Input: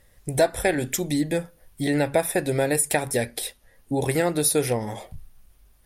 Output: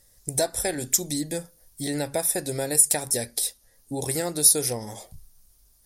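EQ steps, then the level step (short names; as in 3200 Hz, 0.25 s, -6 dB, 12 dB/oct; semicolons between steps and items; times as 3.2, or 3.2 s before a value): resonant high shelf 3800 Hz +11 dB, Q 1.5; -6.0 dB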